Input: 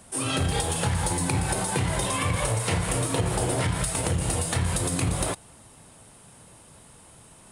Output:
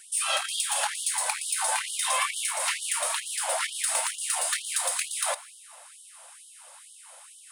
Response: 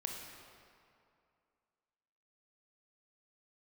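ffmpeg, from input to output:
-filter_complex "[0:a]aeval=exprs='0.299*(cos(1*acos(clip(val(0)/0.299,-1,1)))-cos(1*PI/2))+0.0422*(cos(5*acos(clip(val(0)/0.299,-1,1)))-cos(5*PI/2))':channel_layout=same,asplit=2[link_01][link_02];[1:a]atrim=start_sample=2205[link_03];[link_02][link_03]afir=irnorm=-1:irlink=0,volume=-10dB[link_04];[link_01][link_04]amix=inputs=2:normalize=0,afftfilt=real='re*gte(b*sr/1024,490*pow(2900/490,0.5+0.5*sin(2*PI*2.2*pts/sr)))':imag='im*gte(b*sr/1024,490*pow(2900/490,0.5+0.5*sin(2*PI*2.2*pts/sr)))':win_size=1024:overlap=0.75,volume=-2.5dB"

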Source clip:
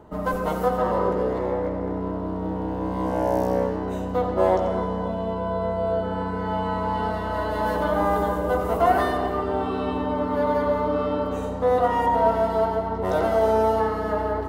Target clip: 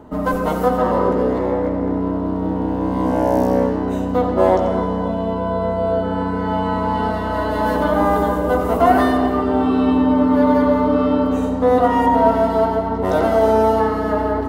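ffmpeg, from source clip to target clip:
ffmpeg -i in.wav -af "equalizer=frequency=260:width_type=o:width=0.24:gain=11,volume=5dB" out.wav

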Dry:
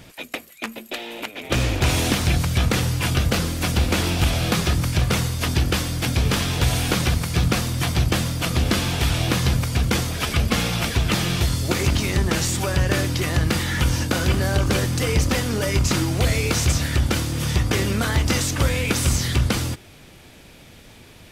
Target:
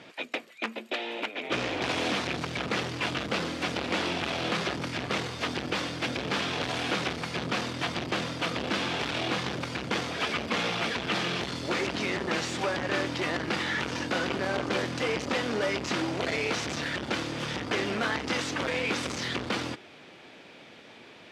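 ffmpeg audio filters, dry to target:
ffmpeg -i in.wav -af "asoftclip=type=hard:threshold=-21.5dB,highpass=280,lowpass=3700" out.wav

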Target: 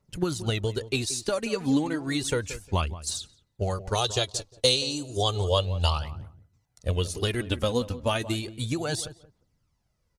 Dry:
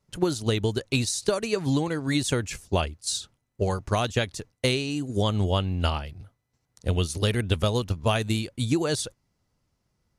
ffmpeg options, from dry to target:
ffmpeg -i in.wav -filter_complex "[0:a]aphaser=in_gain=1:out_gain=1:delay=4.2:decay=0.52:speed=0.32:type=triangular,asettb=1/sr,asplit=3[link_01][link_02][link_03];[link_01]atrim=end=3.954[link_04];[link_02]atrim=start=3.95:end=6.04,asetpts=PTS-STARTPTS,afade=type=in:duration=0.004:curve=qsin,afade=type=out:start_time=2.086:duration=0.004:curve=qsin,equalizer=frequency=125:width_type=o:width=1:gain=3,equalizer=frequency=250:width_type=o:width=1:gain=-12,equalizer=frequency=500:width_type=o:width=1:gain=6,equalizer=frequency=1000:width_type=o:width=1:gain=3,equalizer=frequency=2000:width_type=o:width=1:gain=-10,equalizer=frequency=4000:width_type=o:width=1:gain=11,equalizer=frequency=8000:width_type=o:width=1:gain=7[link_05];[link_03]atrim=start=6.036[link_06];[link_04][link_05]acrossfade=duration=0.004:curve1=hsin:curve2=qsin[link_07];[link_07][link_06]acrossfade=duration=0.004:curve1=qsin:curve2=hsin,asplit=2[link_08][link_09];[link_09]adelay=177,lowpass=frequency=1100:poles=1,volume=-14dB,asplit=2[link_10][link_11];[link_11]adelay=177,lowpass=frequency=1100:poles=1,volume=0.2[link_12];[link_08][link_10][link_12]amix=inputs=3:normalize=0,volume=-3dB" out.wav

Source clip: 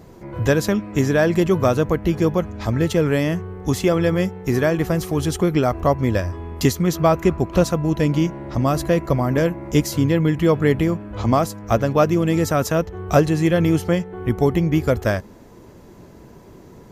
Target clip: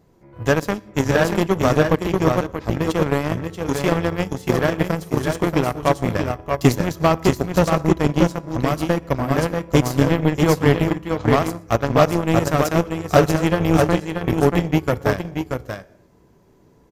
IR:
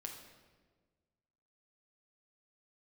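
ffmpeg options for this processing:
-filter_complex "[0:a]aecho=1:1:118|632|648:0.119|0.668|0.237,asplit=2[link_01][link_02];[1:a]atrim=start_sample=2205,afade=type=out:start_time=0.29:duration=0.01,atrim=end_sample=13230[link_03];[link_02][link_03]afir=irnorm=-1:irlink=0,volume=-1.5dB[link_04];[link_01][link_04]amix=inputs=2:normalize=0,aeval=exprs='1.26*(cos(1*acos(clip(val(0)/1.26,-1,1)))-cos(1*PI/2))+0.141*(cos(7*acos(clip(val(0)/1.26,-1,1)))-cos(7*PI/2))':channel_layout=same,volume=-3dB"

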